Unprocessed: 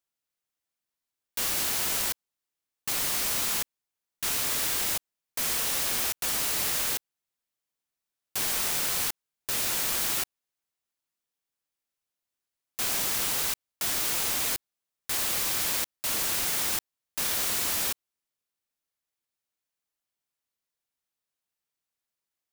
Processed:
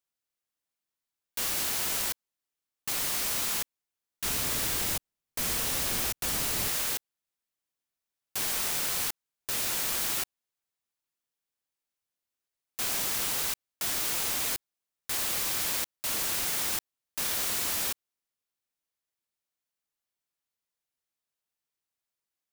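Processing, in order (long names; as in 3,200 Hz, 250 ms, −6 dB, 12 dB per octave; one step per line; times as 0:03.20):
0:04.24–0:06.68: low-shelf EQ 290 Hz +9.5 dB
level −2 dB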